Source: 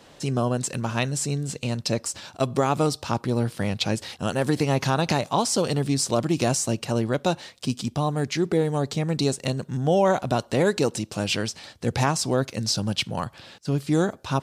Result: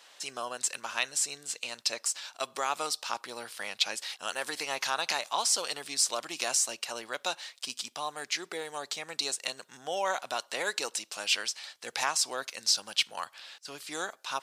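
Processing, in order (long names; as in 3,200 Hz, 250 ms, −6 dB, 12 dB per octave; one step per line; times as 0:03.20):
Bessel high-pass filter 1,400 Hz, order 2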